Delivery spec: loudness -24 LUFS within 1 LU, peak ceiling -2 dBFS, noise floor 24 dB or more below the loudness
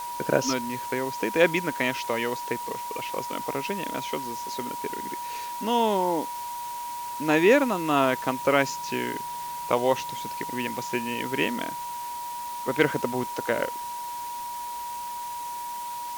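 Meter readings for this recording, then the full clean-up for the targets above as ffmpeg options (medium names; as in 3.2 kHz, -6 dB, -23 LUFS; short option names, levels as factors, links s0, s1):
steady tone 960 Hz; tone level -32 dBFS; noise floor -35 dBFS; noise floor target -52 dBFS; loudness -27.5 LUFS; peak level -6.0 dBFS; loudness target -24.0 LUFS
-> -af "bandreject=f=960:w=30"
-af "afftdn=nr=17:nf=-35"
-af "volume=1.5"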